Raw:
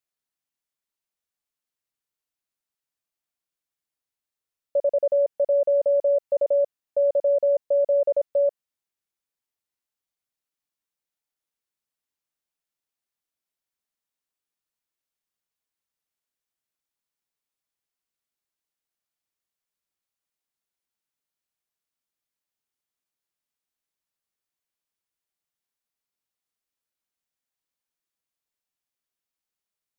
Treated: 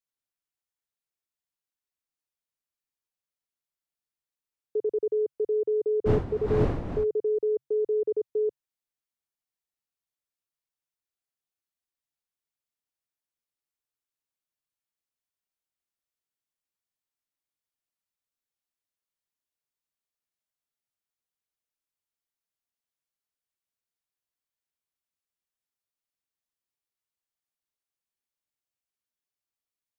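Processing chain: 6.05–7.03 wind noise 400 Hz -18 dBFS; frequency shift -140 Hz; gain -5.5 dB

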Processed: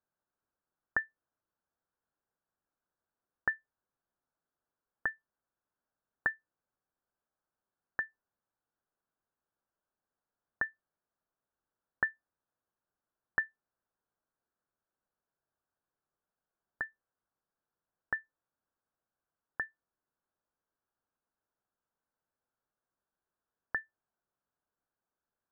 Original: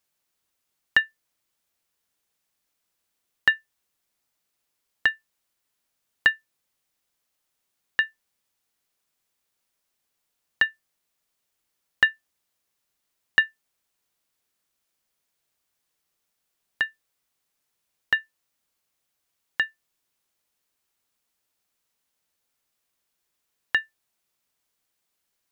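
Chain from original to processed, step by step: elliptic low-pass 1600 Hz, stop band 40 dB; gain -4.5 dB

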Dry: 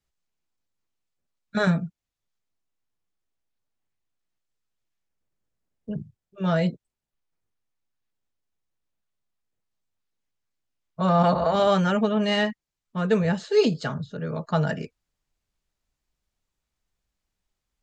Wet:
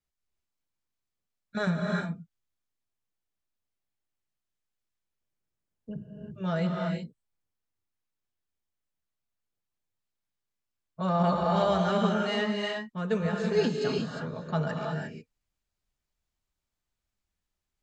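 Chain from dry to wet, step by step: non-linear reverb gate 0.38 s rising, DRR 0 dB; gain -7 dB

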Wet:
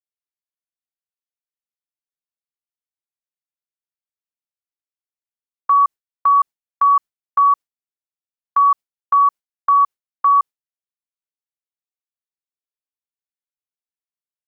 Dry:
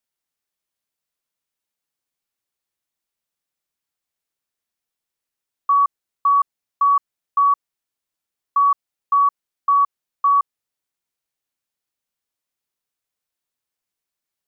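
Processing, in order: gate with hold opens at -15 dBFS; gain +2.5 dB

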